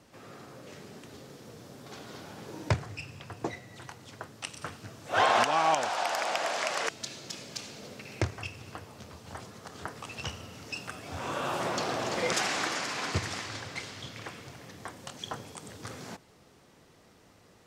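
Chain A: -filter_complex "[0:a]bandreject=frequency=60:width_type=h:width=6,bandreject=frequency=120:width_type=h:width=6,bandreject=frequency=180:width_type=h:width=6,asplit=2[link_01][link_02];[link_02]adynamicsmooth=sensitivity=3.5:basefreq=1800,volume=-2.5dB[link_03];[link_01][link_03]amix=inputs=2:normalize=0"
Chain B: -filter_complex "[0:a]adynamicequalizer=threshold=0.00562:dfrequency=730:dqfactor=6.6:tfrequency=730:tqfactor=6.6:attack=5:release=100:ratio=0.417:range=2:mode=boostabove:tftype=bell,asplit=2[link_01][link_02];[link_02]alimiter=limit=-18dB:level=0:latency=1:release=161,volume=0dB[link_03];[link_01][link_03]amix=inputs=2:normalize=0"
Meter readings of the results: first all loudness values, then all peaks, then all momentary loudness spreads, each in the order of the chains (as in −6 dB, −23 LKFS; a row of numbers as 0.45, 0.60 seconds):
−28.5, −27.0 LKFS; −8.0, −8.0 dBFS; 20, 19 LU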